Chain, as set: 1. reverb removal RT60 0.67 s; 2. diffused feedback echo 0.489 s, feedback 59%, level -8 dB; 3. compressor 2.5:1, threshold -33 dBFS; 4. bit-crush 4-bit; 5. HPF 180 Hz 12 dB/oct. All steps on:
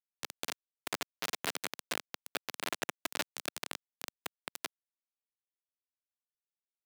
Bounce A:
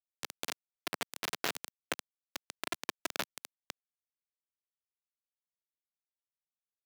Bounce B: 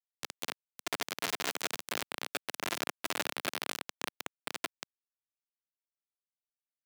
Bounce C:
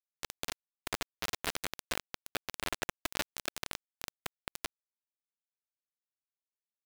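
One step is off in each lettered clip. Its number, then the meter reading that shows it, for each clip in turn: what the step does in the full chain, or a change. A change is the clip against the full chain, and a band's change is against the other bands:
2, momentary loudness spread change +5 LU; 1, crest factor change -2.5 dB; 5, 125 Hz band +6.5 dB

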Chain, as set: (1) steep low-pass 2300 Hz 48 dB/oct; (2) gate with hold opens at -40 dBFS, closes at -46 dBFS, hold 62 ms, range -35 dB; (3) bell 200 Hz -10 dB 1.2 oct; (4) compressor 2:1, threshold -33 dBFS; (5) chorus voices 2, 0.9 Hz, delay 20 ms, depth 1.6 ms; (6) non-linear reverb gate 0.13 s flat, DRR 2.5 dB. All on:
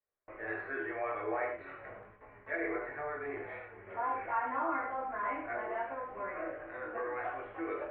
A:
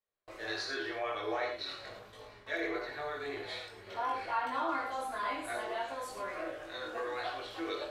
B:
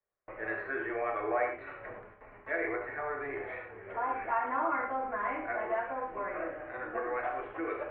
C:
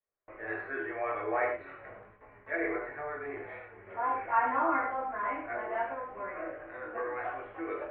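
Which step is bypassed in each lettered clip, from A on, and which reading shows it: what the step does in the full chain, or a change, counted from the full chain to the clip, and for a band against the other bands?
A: 1, momentary loudness spread change -3 LU; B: 5, loudness change +3.0 LU; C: 4, crest factor change +3.5 dB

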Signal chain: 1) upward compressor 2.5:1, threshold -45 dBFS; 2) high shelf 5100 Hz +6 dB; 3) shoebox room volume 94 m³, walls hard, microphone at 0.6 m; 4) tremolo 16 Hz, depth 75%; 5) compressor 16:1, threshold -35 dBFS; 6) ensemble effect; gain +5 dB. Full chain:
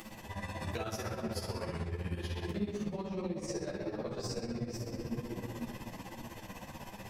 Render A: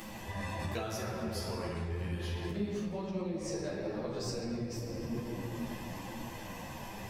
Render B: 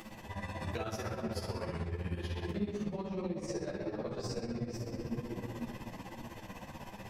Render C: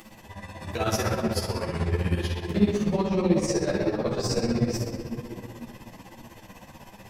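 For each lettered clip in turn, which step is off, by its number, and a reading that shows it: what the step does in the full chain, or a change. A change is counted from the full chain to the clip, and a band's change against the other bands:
4, momentary loudness spread change -3 LU; 2, 8 kHz band -3.5 dB; 5, mean gain reduction 7.5 dB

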